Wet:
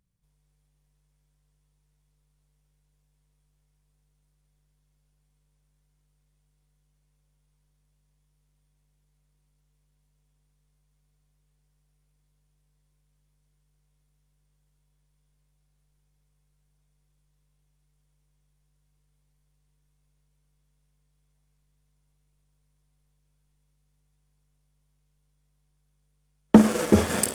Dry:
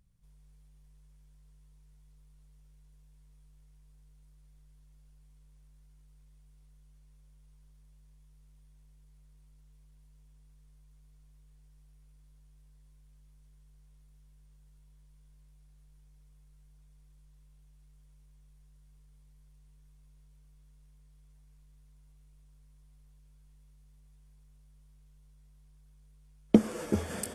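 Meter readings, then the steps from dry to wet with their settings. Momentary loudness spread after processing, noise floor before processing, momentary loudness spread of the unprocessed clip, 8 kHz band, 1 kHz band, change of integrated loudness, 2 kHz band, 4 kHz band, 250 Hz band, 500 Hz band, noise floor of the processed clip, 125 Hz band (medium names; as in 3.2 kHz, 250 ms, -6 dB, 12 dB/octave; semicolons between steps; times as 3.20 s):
4 LU, -59 dBFS, 8 LU, +12.5 dB, +14.5 dB, +8.5 dB, +12.5 dB, +12.0 dB, +8.5 dB, +8.5 dB, -71 dBFS, +8.0 dB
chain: waveshaping leveller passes 3; bass shelf 66 Hz -11 dB; on a send: flutter echo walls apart 8.7 m, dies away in 0.26 s; on the sum: trim +2 dB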